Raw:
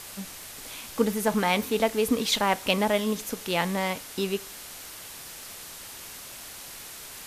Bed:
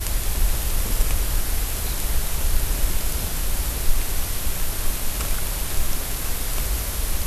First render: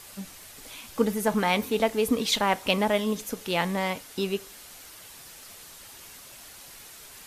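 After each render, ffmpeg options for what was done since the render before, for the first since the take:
-af "afftdn=nr=6:nf=-43"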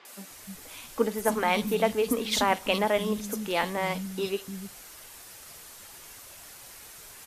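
-filter_complex "[0:a]acrossover=split=210|3600[a][b][c];[c]adelay=50[d];[a]adelay=300[e];[e][b][d]amix=inputs=3:normalize=0"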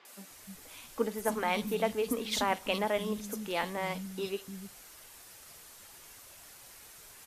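-af "volume=-5.5dB"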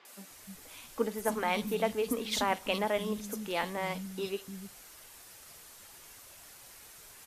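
-af anull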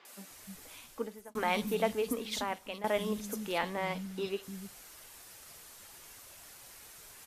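-filter_complex "[0:a]asettb=1/sr,asplit=3[a][b][c];[a]atrim=end=3.584[d];[b]atrim=start=3.58:end=4.43,asetpts=PTS-STARTPTS,afade=t=in:d=0.004:c=qsin,afade=t=out:st=0.846:d=0.004:c=qsin,acrossover=split=4900[e][f];[f]acompressor=threshold=-56dB:ratio=4:attack=1:release=60[g];[e][g]amix=inputs=2:normalize=0[h];[c]atrim=start=4.426[i];[d][h]acrossfade=d=0.004:c1=hsin:c2=qsin[j];[j][i]acrossfade=d=0.004:c1=qsin:c2=hsin,asplit=3[k][l][m];[k]atrim=end=1.35,asetpts=PTS-STARTPTS,afade=t=out:st=0.66:d=0.69[n];[l]atrim=start=1.35:end=2.84,asetpts=PTS-STARTPTS,afade=t=in:d=0.004:c=hsin,afade=t=out:st=0.54:d=0.95:silence=0.211349[o];[m]atrim=start=2.84,asetpts=PTS-STARTPTS,afade=t=in:d=0.004:c=hsin:silence=0.211349[p];[n][o][p]concat=n=3:v=0:a=1"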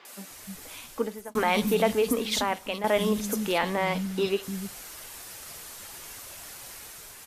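-filter_complex "[0:a]asplit=2[a][b];[b]alimiter=level_in=2.5dB:limit=-24dB:level=0:latency=1,volume=-2.5dB,volume=1.5dB[c];[a][c]amix=inputs=2:normalize=0,dynaudnorm=f=560:g=3:m=3dB"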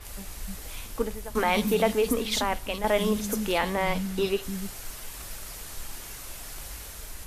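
-filter_complex "[1:a]volume=-18dB[a];[0:a][a]amix=inputs=2:normalize=0"

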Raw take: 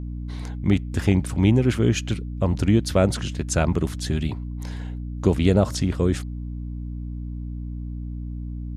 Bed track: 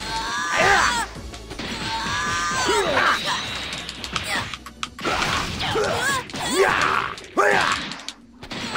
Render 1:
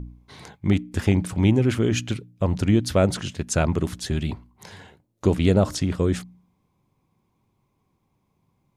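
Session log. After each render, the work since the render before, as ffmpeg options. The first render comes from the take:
-af "bandreject=f=60:t=h:w=4,bandreject=f=120:t=h:w=4,bandreject=f=180:t=h:w=4,bandreject=f=240:t=h:w=4,bandreject=f=300:t=h:w=4"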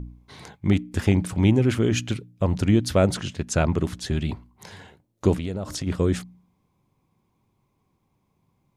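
-filter_complex "[0:a]asettb=1/sr,asplit=3[a][b][c];[a]atrim=end=3.184[d];[b]atrim=start=3.18:end=4.29,asetpts=PTS-STARTPTS,afade=t=in:d=0.004:c=qsin,afade=t=out:st=1.106:d=0.004:c=qsin,highshelf=f=8.9k:g=-7[e];[c]atrim=start=4.286[f];[d][e]acrossfade=d=0.004:c1=hsin:c2=qsin[g];[g][f]acrossfade=d=0.004:c1=qsin:c2=hsin,asplit=3[h][i][j];[h]afade=t=out:st=5.37:d=0.02[k];[i]acompressor=threshold=-26dB:ratio=6:attack=3.2:release=140:knee=1:detection=peak,afade=t=in:st=5.37:d=0.02,afade=t=out:st=5.86:d=0.02[l];[j]afade=t=in:st=5.86:d=0.02[m];[k][l][m]amix=inputs=3:normalize=0"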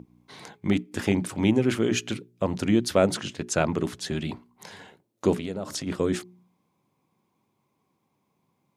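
-af "highpass=180,bandreject=f=60:t=h:w=6,bandreject=f=120:t=h:w=6,bandreject=f=180:t=h:w=6,bandreject=f=240:t=h:w=6,bandreject=f=300:t=h:w=6,bandreject=f=360:t=h:w=6,bandreject=f=420:t=h:w=6"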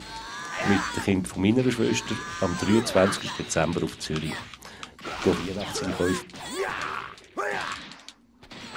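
-filter_complex "[1:a]volume=-11.5dB[a];[0:a][a]amix=inputs=2:normalize=0"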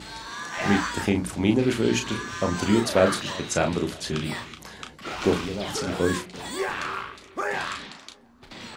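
-filter_complex "[0:a]asplit=2[a][b];[b]adelay=34,volume=-6.5dB[c];[a][c]amix=inputs=2:normalize=0,asplit=2[d][e];[e]adelay=345,lowpass=f=970:p=1,volume=-21dB,asplit=2[f][g];[g]adelay=345,lowpass=f=970:p=1,volume=0.54,asplit=2[h][i];[i]adelay=345,lowpass=f=970:p=1,volume=0.54,asplit=2[j][k];[k]adelay=345,lowpass=f=970:p=1,volume=0.54[l];[d][f][h][j][l]amix=inputs=5:normalize=0"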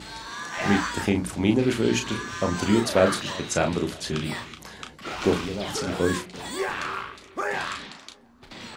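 -af anull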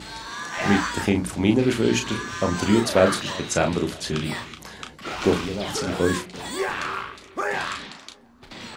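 -af "volume=2dB"

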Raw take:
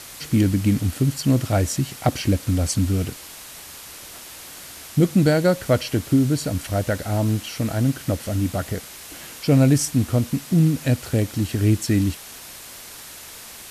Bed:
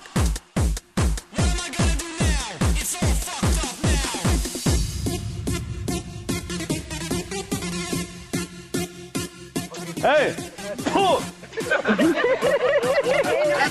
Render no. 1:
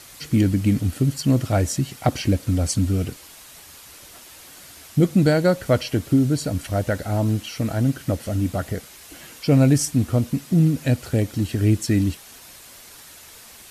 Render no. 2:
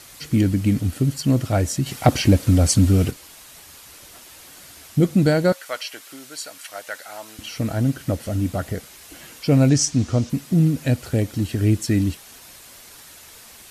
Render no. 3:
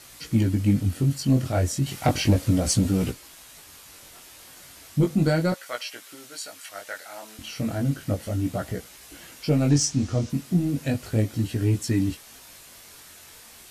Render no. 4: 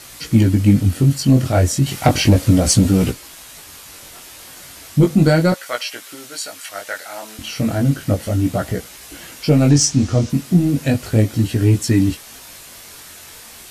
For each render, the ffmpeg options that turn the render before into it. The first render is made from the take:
-af "afftdn=nr=6:nf=-40"
-filter_complex "[0:a]asettb=1/sr,asplit=3[a][b][c];[a]atrim=end=1.864[d];[b]atrim=start=1.86:end=3.11,asetpts=PTS-STARTPTS,afade=t=in:d=0.004:c=qsin,afade=t=out:st=1.246:d=0.004:c=qsin,acontrast=47[e];[c]atrim=start=3.106[f];[d][e]acrossfade=d=0.004:c1=hsin:c2=qsin[g];[g][f]acrossfade=d=0.004:c1=qsin:c2=hsin,asettb=1/sr,asplit=3[h][i][j];[h]atrim=end=5.524[k];[i]atrim=start=5.52:end=7.39,asetpts=PTS-STARTPTS,afade=t=in:d=0.004:c=qsin,afade=t=out:st=1.866:d=0.004:c=qsin,highpass=1.1k[l];[j]atrim=start=7.386[m];[k][l]acrossfade=d=0.004:c1=hsin:c2=qsin[n];[n][m]acrossfade=d=0.004:c1=qsin:c2=hsin,asettb=1/sr,asplit=3[o][p][q];[o]atrim=end=9.694[r];[p]atrim=start=9.69:end=10.3,asetpts=PTS-STARTPTS,afade=t=in:d=0.004:c=qsin,afade=t=out:st=0.606:d=0.004:c=qsin,lowpass=f=6.1k:t=q:w=2.2[s];[q]atrim=start=10.296[t];[r][s]acrossfade=d=0.004:c1=hsin:c2=qsin[u];[u][t]acrossfade=d=0.004:c1=qsin:c2=hsin"
-af "asoftclip=type=tanh:threshold=-7.5dB,flanger=delay=16.5:depth=6.2:speed=0.34"
-af "volume=8.5dB,alimiter=limit=-3dB:level=0:latency=1"

